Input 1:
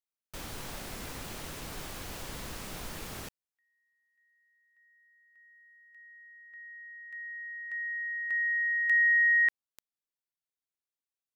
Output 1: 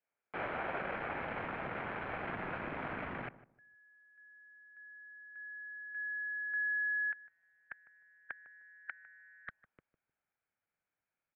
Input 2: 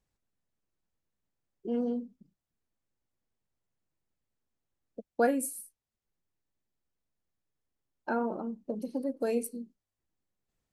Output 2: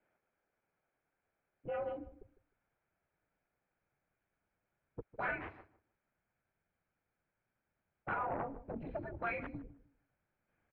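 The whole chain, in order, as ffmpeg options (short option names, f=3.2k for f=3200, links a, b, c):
-filter_complex "[0:a]afftfilt=real='re*lt(hypot(re,im),0.0562)':imag='im*lt(hypot(re,im),0.0562)':win_size=1024:overlap=0.75,asubboost=boost=7.5:cutoff=220,aecho=1:1:1.2:0.36,adynamicequalizer=threshold=0.001:dfrequency=1200:dqfactor=0.75:tfrequency=1200:tqfactor=0.75:attack=5:release=100:ratio=0.4:range=2:mode=boostabove:tftype=bell,acompressor=threshold=-34dB:ratio=6:attack=3.4:release=37:knee=6,aeval=exprs='0.0631*sin(PI/2*4.47*val(0)/0.0631)':c=same,asplit=2[a][b];[b]adelay=153,lowpass=f=1k:p=1,volume=-14.5dB,asplit=2[c][d];[d]adelay=153,lowpass=f=1k:p=1,volume=0.26,asplit=2[e][f];[f]adelay=153,lowpass=f=1k:p=1,volume=0.26[g];[a][c][e][g]amix=inputs=4:normalize=0,highpass=f=360:t=q:w=0.5412,highpass=f=360:t=q:w=1.307,lowpass=f=2.5k:t=q:w=0.5176,lowpass=f=2.5k:t=q:w=0.7071,lowpass=f=2.5k:t=q:w=1.932,afreqshift=-190,volume=-5.5dB"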